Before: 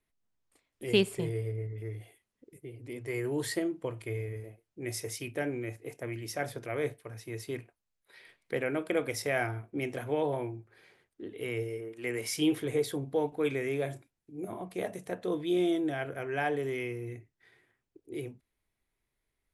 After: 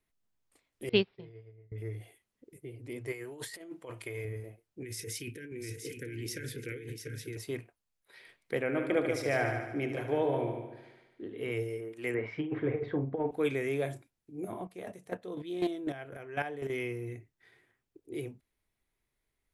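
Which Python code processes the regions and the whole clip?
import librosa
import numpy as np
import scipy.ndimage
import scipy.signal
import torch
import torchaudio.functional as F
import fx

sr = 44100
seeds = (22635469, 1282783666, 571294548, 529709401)

y = fx.chain(x, sr, fx.resample_bad(factor=4, down='none', up='filtered'),
    fx.upward_expand(threshold_db=-39.0, expansion=2.5), at=(0.89, 1.72))
y = fx.chain(y, sr, fx.low_shelf(hz=400.0, db=-10.5),
    fx.over_compress(threshold_db=-41.0, ratio=-0.5), at=(3.12, 4.25))
y = fx.chain(y, sr, fx.cheby1_bandstop(low_hz=480.0, high_hz=1500.0, order=4),
    fx.over_compress(threshold_db=-41.0, ratio=-1.0),
    fx.echo_single(ms=696, db=-7.0), at=(4.82, 7.37))
y = fx.chain(y, sr, fx.lowpass(hz=3300.0, slope=6),
    fx.echo_heads(ms=74, heads='first and second', feedback_pct=46, wet_db=-9), at=(8.61, 11.52))
y = fx.chain(y, sr, fx.lowpass(hz=2100.0, slope=24),
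    fx.over_compress(threshold_db=-30.0, ratio=-0.5),
    fx.doubler(ms=45.0, db=-9), at=(12.14, 13.31))
y = fx.chain(y, sr, fx.chopper(hz=4.0, depth_pct=65, duty_pct=20),
    fx.doppler_dist(depth_ms=0.13), at=(14.62, 16.7))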